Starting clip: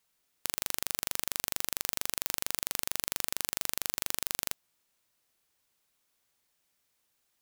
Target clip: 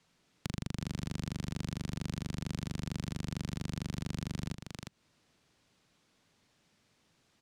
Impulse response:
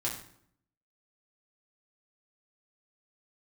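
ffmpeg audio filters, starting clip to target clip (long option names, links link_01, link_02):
-filter_complex "[0:a]lowpass=5600,equalizer=frequency=160:width=0.53:gain=12.5,aecho=1:1:356:0.316,acrossover=split=230[link_01][link_02];[link_02]acompressor=threshold=-49dB:ratio=10[link_03];[link_01][link_03]amix=inputs=2:normalize=0,volume=7.5dB"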